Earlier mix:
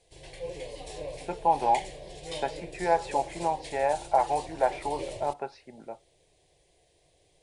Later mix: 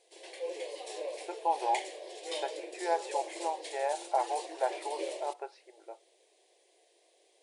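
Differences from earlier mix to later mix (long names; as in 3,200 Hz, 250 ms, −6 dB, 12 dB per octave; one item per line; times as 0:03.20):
speech −6.0 dB
master: add linear-phase brick-wall high-pass 310 Hz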